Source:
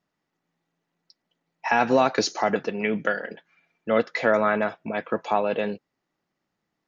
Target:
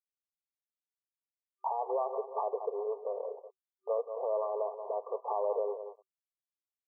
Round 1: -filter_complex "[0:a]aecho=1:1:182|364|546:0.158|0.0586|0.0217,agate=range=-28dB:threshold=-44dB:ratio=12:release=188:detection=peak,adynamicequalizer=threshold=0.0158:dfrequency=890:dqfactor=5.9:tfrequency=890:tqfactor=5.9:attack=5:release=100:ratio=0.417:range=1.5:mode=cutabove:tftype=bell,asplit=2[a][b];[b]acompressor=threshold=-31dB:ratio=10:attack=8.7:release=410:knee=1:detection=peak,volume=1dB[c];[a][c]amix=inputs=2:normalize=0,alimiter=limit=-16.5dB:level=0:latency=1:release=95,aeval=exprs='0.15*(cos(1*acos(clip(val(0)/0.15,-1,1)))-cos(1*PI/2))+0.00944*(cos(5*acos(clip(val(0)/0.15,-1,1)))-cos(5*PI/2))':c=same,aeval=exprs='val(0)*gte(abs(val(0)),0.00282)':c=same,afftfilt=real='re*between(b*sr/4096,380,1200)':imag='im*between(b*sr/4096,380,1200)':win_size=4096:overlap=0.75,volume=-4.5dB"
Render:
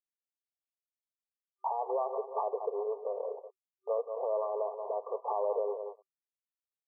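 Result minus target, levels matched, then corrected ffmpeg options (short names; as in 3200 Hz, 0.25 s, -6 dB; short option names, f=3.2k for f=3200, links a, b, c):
compressor: peak gain reduction -9 dB
-filter_complex "[0:a]aecho=1:1:182|364|546:0.158|0.0586|0.0217,agate=range=-28dB:threshold=-44dB:ratio=12:release=188:detection=peak,adynamicequalizer=threshold=0.0158:dfrequency=890:dqfactor=5.9:tfrequency=890:tqfactor=5.9:attack=5:release=100:ratio=0.417:range=1.5:mode=cutabove:tftype=bell,asplit=2[a][b];[b]acompressor=threshold=-41dB:ratio=10:attack=8.7:release=410:knee=1:detection=peak,volume=1dB[c];[a][c]amix=inputs=2:normalize=0,alimiter=limit=-16.5dB:level=0:latency=1:release=95,aeval=exprs='0.15*(cos(1*acos(clip(val(0)/0.15,-1,1)))-cos(1*PI/2))+0.00944*(cos(5*acos(clip(val(0)/0.15,-1,1)))-cos(5*PI/2))':c=same,aeval=exprs='val(0)*gte(abs(val(0)),0.00282)':c=same,afftfilt=real='re*between(b*sr/4096,380,1200)':imag='im*between(b*sr/4096,380,1200)':win_size=4096:overlap=0.75,volume=-4.5dB"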